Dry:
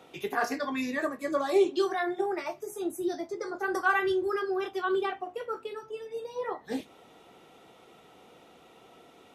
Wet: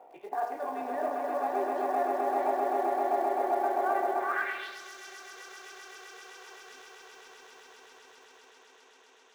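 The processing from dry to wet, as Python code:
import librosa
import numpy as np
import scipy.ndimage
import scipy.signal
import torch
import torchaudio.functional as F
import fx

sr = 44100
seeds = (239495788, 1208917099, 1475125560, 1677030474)

p1 = fx.wiener(x, sr, points=9)
p2 = fx.over_compress(p1, sr, threshold_db=-35.0, ratio=-0.5)
p3 = p1 + (p2 * 10.0 ** (-2.0 / 20.0))
p4 = fx.cheby_harmonics(p3, sr, harmonics=(6,), levels_db=(-30,), full_scale_db=-12.5)
p5 = fx.echo_swell(p4, sr, ms=130, loudest=8, wet_db=-5.0)
p6 = fx.filter_sweep_bandpass(p5, sr, from_hz=740.0, to_hz=6000.0, start_s=4.15, end_s=4.81, q=3.0)
p7 = fx.low_shelf(p6, sr, hz=280.0, db=6.5, at=(0.62, 1.1))
p8 = fx.quant_float(p7, sr, bits=4)
p9 = fx.peak_eq(p8, sr, hz=120.0, db=-8.0, octaves=1.6)
p10 = fx.notch(p9, sr, hz=1300.0, q=8.8)
y = fx.echo_crushed(p10, sr, ms=103, feedback_pct=55, bits=9, wet_db=-10.5)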